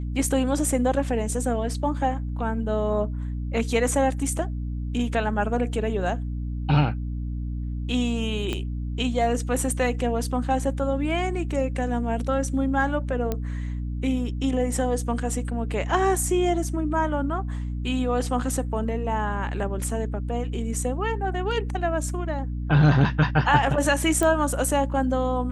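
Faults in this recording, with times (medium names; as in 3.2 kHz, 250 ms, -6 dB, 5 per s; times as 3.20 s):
hum 60 Hz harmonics 5 -29 dBFS
8.53 s: pop -15 dBFS
13.32 s: pop -13 dBFS
24.23 s: pop -11 dBFS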